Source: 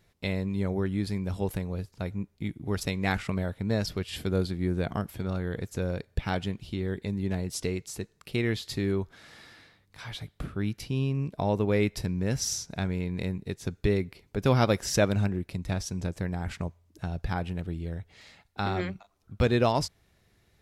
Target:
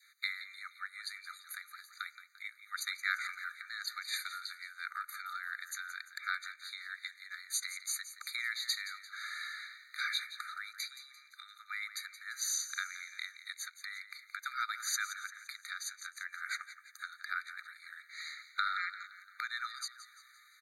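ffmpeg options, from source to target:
-filter_complex "[0:a]adynamicequalizer=threshold=0.00562:dfrequency=1300:dqfactor=1.8:tfrequency=1300:tqfactor=1.8:attack=5:release=100:ratio=0.375:range=2.5:mode=boostabove:tftype=bell,acompressor=threshold=-35dB:ratio=6,asplit=2[a][b];[b]asplit=5[c][d][e][f][g];[c]adelay=172,afreqshift=55,volume=-13dB[h];[d]adelay=344,afreqshift=110,volume=-19.6dB[i];[e]adelay=516,afreqshift=165,volume=-26.1dB[j];[f]adelay=688,afreqshift=220,volume=-32.7dB[k];[g]adelay=860,afreqshift=275,volume=-39.2dB[l];[h][i][j][k][l]amix=inputs=5:normalize=0[m];[a][m]amix=inputs=2:normalize=0,afftfilt=real='re*eq(mod(floor(b*sr/1024/1200),2),1)':imag='im*eq(mod(floor(b*sr/1024/1200),2),1)':win_size=1024:overlap=0.75,volume=10dB"

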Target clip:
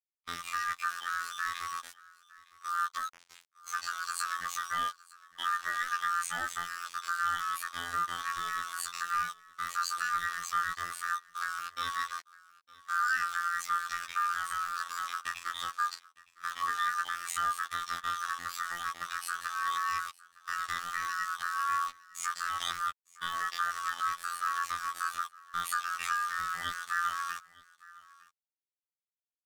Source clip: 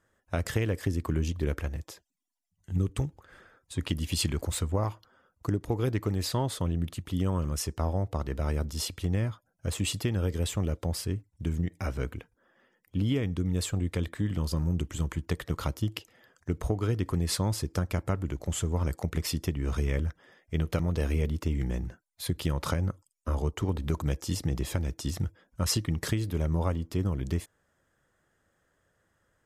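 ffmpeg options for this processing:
-filter_complex "[0:a]afftfilt=real='real(if(lt(b,1008),b+24*(1-2*mod(floor(b/24),2)),b),0)':imag='imag(if(lt(b,1008),b+24*(1-2*mod(floor(b/24),2)),b),0)':win_size=2048:overlap=0.75,lowpass=7.2k,acrossover=split=5400[a][b];[a]dynaudnorm=f=260:g=17:m=5.5dB[c];[c][b]amix=inputs=2:normalize=0,alimiter=limit=-17.5dB:level=0:latency=1:release=384,asplit=2[d][e];[e]acompressor=threshold=-37dB:ratio=16,volume=-2.5dB[f];[d][f]amix=inputs=2:normalize=0,acrusher=bits=5:mix=0:aa=0.000001,acrossover=split=490 5300:gain=0.251 1 0.251[g][h][i];[g][h][i]amix=inputs=3:normalize=0,asetrate=85689,aresample=44100,atempo=0.514651,aecho=1:1:910:0.0794,afftfilt=real='hypot(re,im)*cos(PI*b)':imag='0':win_size=2048:overlap=0.75"

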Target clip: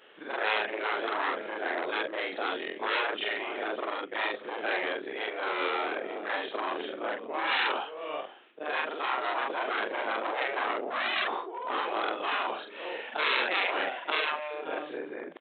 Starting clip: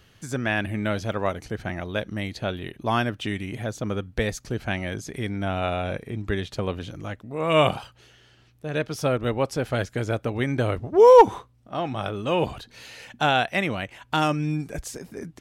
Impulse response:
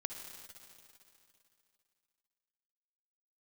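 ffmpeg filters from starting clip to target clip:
-filter_complex "[0:a]afftfilt=real='re':imag='-im':win_size=4096:overlap=0.75,highshelf=f=2k:g=-7,asplit=2[a][b];[b]aecho=0:1:537:0.0841[c];[a][c]amix=inputs=2:normalize=0,apsyclip=13dB,aresample=8000,aeval=exprs='clip(val(0),-1,0.1)':c=same,aresample=44100,afftfilt=real='re*lt(hypot(re,im),0.282)':imag='im*lt(hypot(re,im),0.282)':win_size=1024:overlap=0.75,highpass=f=350:w=0.5412,highpass=f=350:w=1.3066,volume=-1.5dB"

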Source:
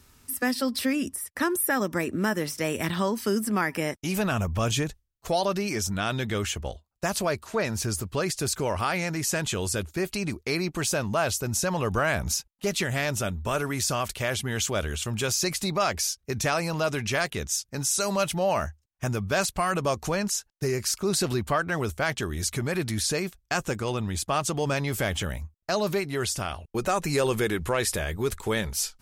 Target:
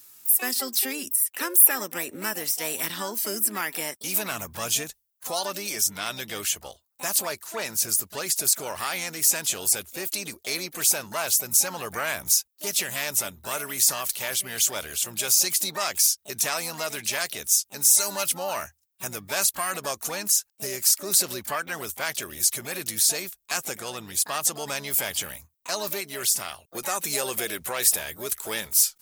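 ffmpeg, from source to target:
-filter_complex "[0:a]aemphasis=mode=production:type=riaa,asplit=2[a][b];[b]asetrate=66075,aresample=44100,atempo=0.66742,volume=-8dB[c];[a][c]amix=inputs=2:normalize=0,volume=-4.5dB"

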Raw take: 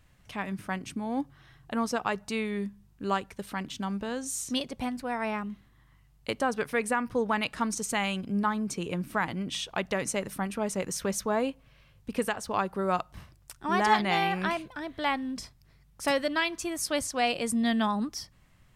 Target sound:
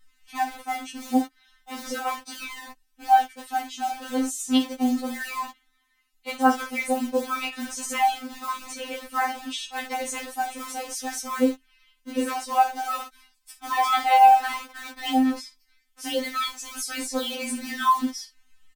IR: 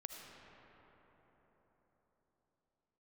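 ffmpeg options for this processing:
-filter_complex "[0:a]equalizer=f=760:t=o:w=0.35:g=8.5,flanger=delay=16:depth=6.4:speed=0.61,asplit=2[a][b];[b]adelay=50,volume=-12dB[c];[a][c]amix=inputs=2:normalize=0,acrossover=split=170|1300[d][e][f];[e]acrusher=bits=6:mix=0:aa=0.000001[g];[d][g][f]amix=inputs=3:normalize=0,afftfilt=real='re*3.46*eq(mod(b,12),0)':imag='im*3.46*eq(mod(b,12),0)':win_size=2048:overlap=0.75,volume=7dB"

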